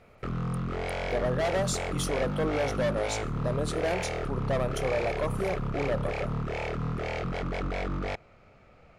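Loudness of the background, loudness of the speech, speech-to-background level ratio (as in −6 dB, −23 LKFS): −33.0 LKFS, −32.0 LKFS, 1.0 dB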